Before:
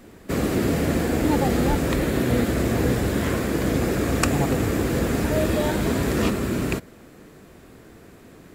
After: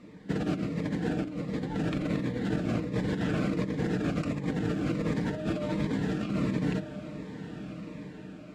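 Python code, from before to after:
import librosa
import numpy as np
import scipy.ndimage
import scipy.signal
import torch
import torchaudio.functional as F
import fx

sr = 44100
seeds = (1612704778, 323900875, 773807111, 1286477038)

y = fx.highpass(x, sr, hz=110.0, slope=6)
y = fx.peak_eq(y, sr, hz=190.0, db=8.5, octaves=0.48)
y = y + 0.48 * np.pad(y, (int(6.6 * sr / 1000.0), 0))[:len(y)]
y = fx.echo_diffused(y, sr, ms=1365, feedback_pct=40, wet_db=-16.0)
y = fx.over_compress(y, sr, threshold_db=-22.0, ratio=-0.5)
y = scipy.signal.sosfilt(scipy.signal.butter(2, 4000.0, 'lowpass', fs=sr, output='sos'), y)
y = fx.notch(y, sr, hz=390.0, q=12.0)
y = fx.notch_cascade(y, sr, direction='falling', hz=1.4)
y = y * 10.0 ** (-6.5 / 20.0)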